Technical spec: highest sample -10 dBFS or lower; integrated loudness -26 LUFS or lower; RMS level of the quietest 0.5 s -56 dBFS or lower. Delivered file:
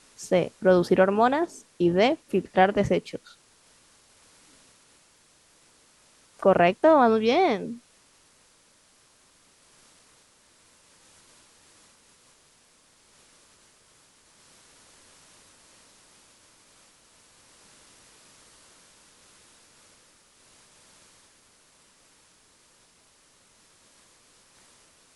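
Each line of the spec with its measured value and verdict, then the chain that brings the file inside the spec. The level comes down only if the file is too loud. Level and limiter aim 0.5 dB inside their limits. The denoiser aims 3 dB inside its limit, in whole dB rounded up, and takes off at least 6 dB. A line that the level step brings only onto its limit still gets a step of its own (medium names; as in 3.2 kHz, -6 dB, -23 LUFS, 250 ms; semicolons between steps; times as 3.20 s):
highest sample -7.5 dBFS: fail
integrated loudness -22.5 LUFS: fail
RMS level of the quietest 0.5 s -61 dBFS: pass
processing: trim -4 dB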